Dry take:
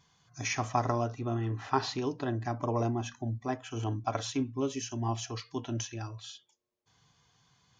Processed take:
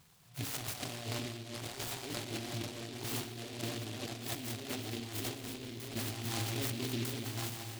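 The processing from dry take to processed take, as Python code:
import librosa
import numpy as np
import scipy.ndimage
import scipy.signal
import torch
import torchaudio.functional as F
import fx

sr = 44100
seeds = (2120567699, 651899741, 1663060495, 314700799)

y = fx.reverse_delay_fb(x, sr, ms=625, feedback_pct=50, wet_db=-1)
y = y + 10.0 ** (-11.5 / 20.0) * np.pad(y, (int(224 * sr / 1000.0), 0))[:len(y)]
y = fx.over_compress(y, sr, threshold_db=-38.0, ratio=-1.0)
y = fx.tube_stage(y, sr, drive_db=35.0, bias=0.75, at=(5.34, 5.96))
y = fx.rev_spring(y, sr, rt60_s=1.2, pass_ms=(47, 58), chirp_ms=50, drr_db=7.5)
y = fx.noise_mod_delay(y, sr, seeds[0], noise_hz=3100.0, depth_ms=0.23)
y = y * librosa.db_to_amplitude(-3.0)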